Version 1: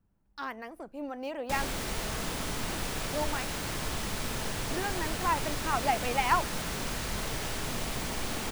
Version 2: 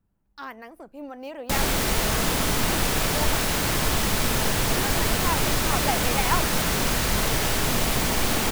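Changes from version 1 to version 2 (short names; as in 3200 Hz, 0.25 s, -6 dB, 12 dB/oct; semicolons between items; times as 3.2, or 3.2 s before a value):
background +10.5 dB; master: add bell 15000 Hz +9.5 dB 0.31 oct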